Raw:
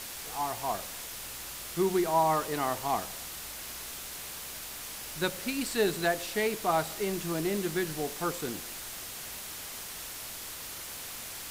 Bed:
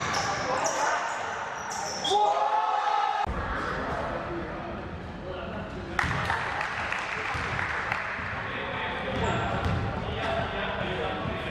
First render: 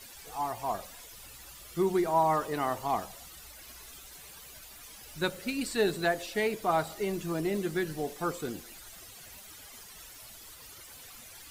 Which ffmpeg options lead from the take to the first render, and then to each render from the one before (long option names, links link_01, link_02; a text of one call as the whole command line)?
ffmpeg -i in.wav -af "afftdn=noise_reduction=13:noise_floor=-42" out.wav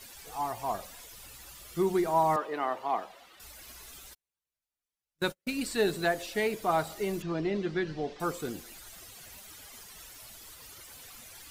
ffmpeg -i in.wav -filter_complex "[0:a]asettb=1/sr,asplit=3[link_01][link_02][link_03];[link_01]atrim=end=2.364[link_04];[link_02]atrim=start=2.36:end=3.4,asetpts=PTS-STARTPTS,afade=type=in:duration=0.004:curve=qsin,afade=type=out:start_time=1.036:duration=0.004:curve=qsin,acrossover=split=260 3800:gain=0.0794 1 0.126[link_05][link_06][link_07];[link_05][link_06][link_07]amix=inputs=3:normalize=0[link_08];[link_03]atrim=start=3.396[link_09];[link_04][link_08]acrossfade=duration=0.004:curve1=hsin:curve2=qsin[link_10];[link_10][link_09]acrossfade=duration=0.004:curve1=qsin:curve2=hsin,asplit=3[link_11][link_12][link_13];[link_11]afade=type=out:start_time=4.13:duration=0.02[link_14];[link_12]agate=range=-46dB:threshold=-38dB:ratio=16:release=100:detection=peak,afade=type=in:start_time=4.13:duration=0.02,afade=type=out:start_time=5.64:duration=0.02[link_15];[link_13]afade=type=in:start_time=5.64:duration=0.02[link_16];[link_14][link_15][link_16]amix=inputs=3:normalize=0,asettb=1/sr,asplit=3[link_17][link_18][link_19];[link_17]atrim=end=7.224[link_20];[link_18]atrim=start=7.22:end=8.2,asetpts=PTS-STARTPTS,afade=type=in:duration=0.004:curve=qsin,afade=type=out:start_time=0.976:duration=0.004:curve=qsin,lowpass=frequency=4900:width=0.5412,lowpass=frequency=4900:width=1.3066[link_21];[link_19]atrim=start=8.196[link_22];[link_20][link_21]acrossfade=duration=0.004:curve1=hsin:curve2=qsin[link_23];[link_23][link_22]acrossfade=duration=0.004:curve1=qsin:curve2=hsin" out.wav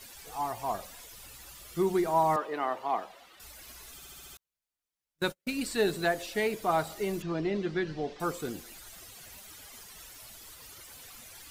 ffmpeg -i in.wav -filter_complex "[0:a]asplit=7[link_01][link_02][link_03][link_04][link_05][link_06][link_07];[link_01]atrim=end=4.022[link_08];[link_02]atrim=start=3.948:end=4.022[link_09];[link_03]atrim=start=3.948:end=4.022[link_10];[link_04]atrim=start=3.948:end=4.022[link_11];[link_05]atrim=start=3.948:end=4.022[link_12];[link_06]atrim=start=3.948:end=4.022[link_13];[link_07]atrim=start=4.368[link_14];[link_08][link_09]acrossfade=duration=0.004:curve1=hsin:curve2=hsin[link_15];[link_15][link_10]acrossfade=duration=0.004:curve1=hsin:curve2=hsin[link_16];[link_16][link_11]acrossfade=duration=0.004:curve1=hsin:curve2=hsin[link_17];[link_17][link_12]acrossfade=duration=0.004:curve1=hsin:curve2=hsin[link_18];[link_18][link_13]acrossfade=duration=0.004:curve1=hsin:curve2=hsin[link_19];[link_19][link_14]acrossfade=duration=0.004:curve1=hsin:curve2=hsin" out.wav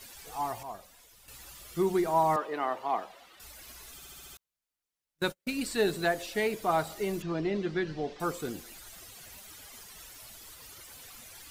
ffmpeg -i in.wav -filter_complex "[0:a]asplit=3[link_01][link_02][link_03];[link_01]atrim=end=0.632[link_04];[link_02]atrim=start=0.628:end=1.282,asetpts=PTS-STARTPTS,volume=-9dB[link_05];[link_03]atrim=start=1.278[link_06];[link_04][link_05]acrossfade=duration=0.004:curve1=hsin:curve2=hsin[link_07];[link_07][link_06]acrossfade=duration=0.004:curve1=hsin:curve2=hsin" out.wav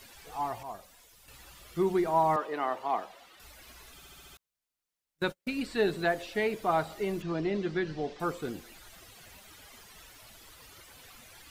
ffmpeg -i in.wav -filter_complex "[0:a]acrossover=split=4200[link_01][link_02];[link_02]acompressor=threshold=-54dB:ratio=4:attack=1:release=60[link_03];[link_01][link_03]amix=inputs=2:normalize=0" out.wav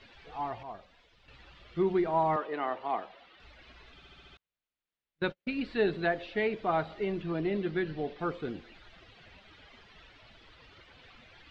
ffmpeg -i in.wav -af "lowpass=frequency=3800:width=0.5412,lowpass=frequency=3800:width=1.3066,equalizer=frequency=980:width=1.5:gain=-3" out.wav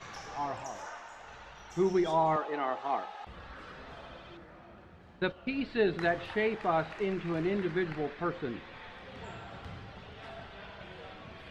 ffmpeg -i in.wav -i bed.wav -filter_complex "[1:a]volume=-17.5dB[link_01];[0:a][link_01]amix=inputs=2:normalize=0" out.wav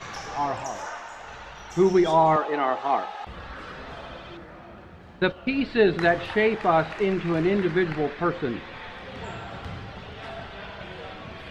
ffmpeg -i in.wav -af "volume=8.5dB" out.wav